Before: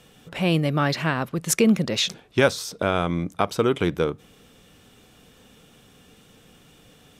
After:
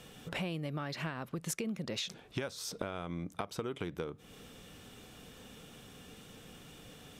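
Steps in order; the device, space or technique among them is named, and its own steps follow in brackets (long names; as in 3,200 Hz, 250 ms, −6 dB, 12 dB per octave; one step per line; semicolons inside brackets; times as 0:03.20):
serial compression, leveller first (downward compressor 2 to 1, threshold −23 dBFS, peak gain reduction 6.5 dB; downward compressor 5 to 1, threshold −36 dBFS, peak gain reduction 16 dB)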